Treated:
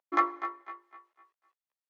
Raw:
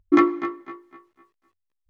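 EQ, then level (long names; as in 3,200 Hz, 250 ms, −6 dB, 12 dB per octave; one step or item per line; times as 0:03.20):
high-pass filter 630 Hz 24 dB per octave
spectral tilt −2.5 dB per octave
dynamic equaliser 2,700 Hz, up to −5 dB, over −44 dBFS, Q 1.6
−1.5 dB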